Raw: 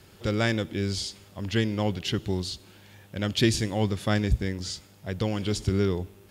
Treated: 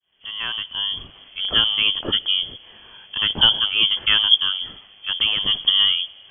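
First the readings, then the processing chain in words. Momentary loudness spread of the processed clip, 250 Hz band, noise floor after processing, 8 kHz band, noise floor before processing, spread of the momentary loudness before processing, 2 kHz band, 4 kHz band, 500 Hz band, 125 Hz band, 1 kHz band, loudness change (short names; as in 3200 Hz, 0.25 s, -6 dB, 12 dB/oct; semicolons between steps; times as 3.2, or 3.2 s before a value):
15 LU, -12.0 dB, -49 dBFS, under -40 dB, -54 dBFS, 11 LU, +8.0 dB, +19.5 dB, -10.5 dB, -14.5 dB, +3.0 dB, +10.0 dB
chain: opening faded in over 1.33 s; inverted band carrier 3300 Hz; gain +6.5 dB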